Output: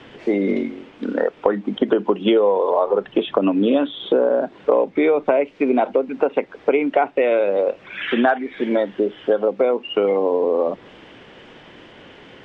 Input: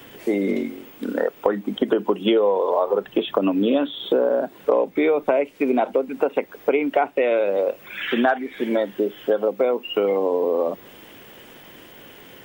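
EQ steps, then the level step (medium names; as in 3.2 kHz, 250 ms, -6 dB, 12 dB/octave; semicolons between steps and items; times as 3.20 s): low-pass 5.8 kHz 12 dB/octave; distance through air 91 m; +2.5 dB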